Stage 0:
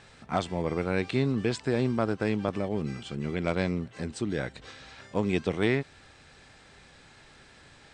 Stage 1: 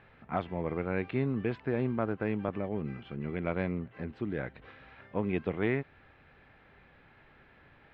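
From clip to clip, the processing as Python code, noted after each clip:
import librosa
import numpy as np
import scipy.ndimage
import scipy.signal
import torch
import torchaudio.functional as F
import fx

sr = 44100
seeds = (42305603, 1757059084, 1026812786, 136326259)

y = scipy.signal.sosfilt(scipy.signal.butter(4, 2600.0, 'lowpass', fs=sr, output='sos'), x)
y = F.gain(torch.from_numpy(y), -4.0).numpy()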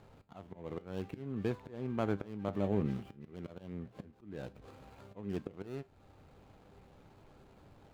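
y = scipy.ndimage.median_filter(x, 25, mode='constant')
y = fx.auto_swell(y, sr, attack_ms=557.0)
y = fx.comb_fb(y, sr, f0_hz=99.0, decay_s=0.28, harmonics='all', damping=0.0, mix_pct=50)
y = F.gain(torch.from_numpy(y), 7.0).numpy()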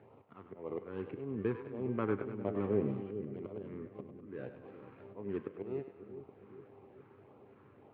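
y = fx.filter_lfo_notch(x, sr, shape='sine', hz=1.8, low_hz=620.0, high_hz=1700.0, q=1.4)
y = fx.cabinet(y, sr, low_hz=110.0, low_slope=24, high_hz=2400.0, hz=(170.0, 410.0, 1100.0), db=(-10, 5, 5))
y = fx.echo_split(y, sr, split_hz=490.0, low_ms=410, high_ms=100, feedback_pct=52, wet_db=-9)
y = F.gain(torch.from_numpy(y), 1.0).numpy()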